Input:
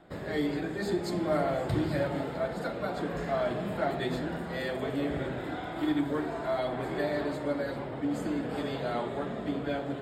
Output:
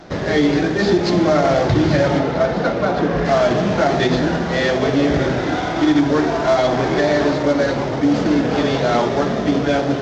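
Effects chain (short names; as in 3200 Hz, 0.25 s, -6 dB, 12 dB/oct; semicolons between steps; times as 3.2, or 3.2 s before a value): CVSD 32 kbps; 2.18–3.24 LPF 4000 Hz -> 2300 Hz 6 dB/oct; maximiser +21.5 dB; gain -5.5 dB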